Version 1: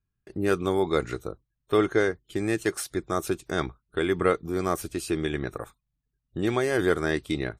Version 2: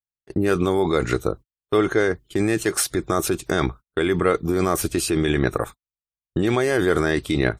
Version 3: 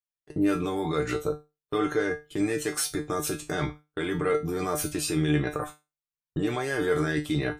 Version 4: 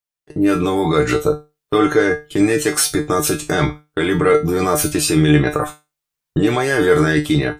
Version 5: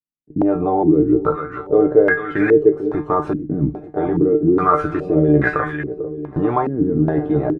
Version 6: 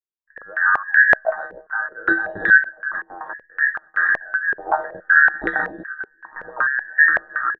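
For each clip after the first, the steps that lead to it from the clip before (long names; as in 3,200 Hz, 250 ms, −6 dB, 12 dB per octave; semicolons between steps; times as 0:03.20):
noise gate −45 dBFS, range −38 dB; in parallel at 0 dB: compressor whose output falls as the input rises −30 dBFS, ratio −0.5; on the sum: level +2.5 dB
in parallel at +2 dB: brickwall limiter −15 dBFS, peak gain reduction 9.5 dB; on the sum: tuned comb filter 150 Hz, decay 0.24 s, harmonics all, mix 90%; level −2 dB
automatic gain control gain up to 7.5 dB; level +4.5 dB
repeating echo 445 ms, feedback 50%, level −11.5 dB; low-pass on a step sequencer 2.4 Hz 250–1,700 Hz; level −4 dB
frequency inversion band by band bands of 2,000 Hz; low-pass on a step sequencer 5.3 Hz 410–1,900 Hz; level −7.5 dB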